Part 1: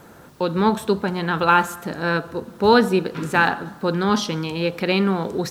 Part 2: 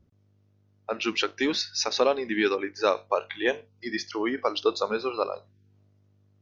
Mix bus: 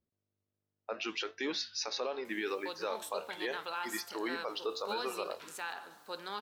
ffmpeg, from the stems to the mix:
ffmpeg -i stem1.wav -i stem2.wav -filter_complex "[0:a]highpass=990,equalizer=frequency=1500:width=0.72:gain=-9.5,alimiter=limit=-21.5dB:level=0:latency=1:release=97,adelay=2250,volume=-2dB[link_01];[1:a]agate=range=-9dB:threshold=-50dB:ratio=16:detection=peak,bass=frequency=250:gain=-10,treble=frequency=4000:gain=-1,volume=-2.5dB[link_02];[link_01][link_02]amix=inputs=2:normalize=0,flanger=delay=4.5:depth=9:regen=87:speed=0.74:shape=sinusoidal,alimiter=level_in=1.5dB:limit=-24dB:level=0:latency=1:release=29,volume=-1.5dB" out.wav

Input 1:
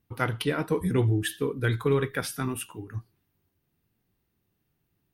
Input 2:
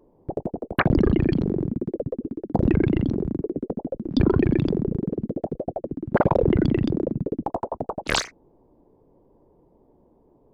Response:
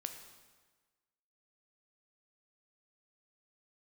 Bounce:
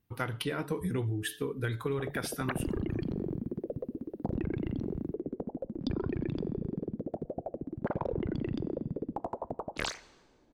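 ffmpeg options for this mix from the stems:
-filter_complex "[0:a]bandreject=frequency=144.1:width_type=h:width=4,bandreject=frequency=288.2:width_type=h:width=4,bandreject=frequency=432.3:width_type=h:width=4,bandreject=frequency=576.4:width_type=h:width=4,volume=-2.5dB[link_01];[1:a]adelay=1700,volume=-10dB,asplit=2[link_02][link_03];[link_03]volume=-10.5dB[link_04];[2:a]atrim=start_sample=2205[link_05];[link_04][link_05]afir=irnorm=-1:irlink=0[link_06];[link_01][link_02][link_06]amix=inputs=3:normalize=0,acompressor=threshold=-29dB:ratio=6"

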